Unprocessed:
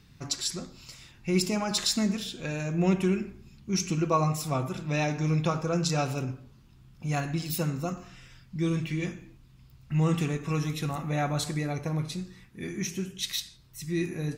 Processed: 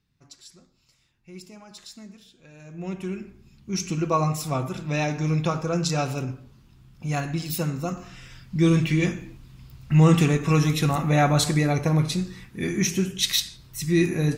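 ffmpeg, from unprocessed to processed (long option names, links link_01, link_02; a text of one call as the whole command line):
ffmpeg -i in.wav -af "volume=9dB,afade=type=in:start_time=2.51:duration=0.43:silence=0.334965,afade=type=in:start_time=2.94:duration=1.26:silence=0.316228,afade=type=in:start_time=7.81:duration=0.88:silence=0.473151" out.wav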